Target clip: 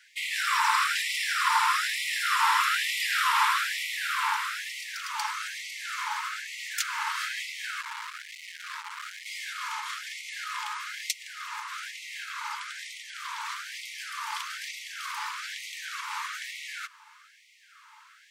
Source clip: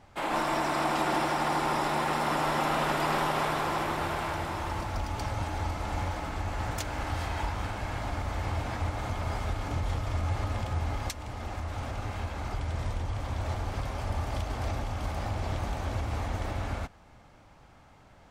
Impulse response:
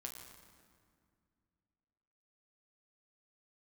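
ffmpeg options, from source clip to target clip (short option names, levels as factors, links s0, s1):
-filter_complex "[0:a]asettb=1/sr,asplit=3[s0][s1][s2];[s0]atrim=end=7.814[s3];[s1]atrim=start=7.81:end=9.26,asetpts=PTS-STARTPTS,afade=t=in:d=0.004:c=qsin,afade=t=out:st=1.446:d=0.004:c=qsin,aeval=exprs='(tanh(70.8*val(0)+0.6)-tanh(0.6))/70.8':c=same[s4];[s2]atrim=start=9.256[s5];[s3][s4]acrossfade=d=0.004:c1=hsin:c2=qsin[s6];[s6][s5]acrossfade=d=0.004:c1=qsin:c2=hsin,afftfilt=real='re*gte(b*sr/1024,840*pow(1900/840,0.5+0.5*sin(2*PI*1.1*pts/sr)))':imag='im*gte(b*sr/1024,840*pow(1900/840,0.5+0.5*sin(2*PI*1.1*pts/sr)))':win_size=1024:overlap=0.75,volume=2.66"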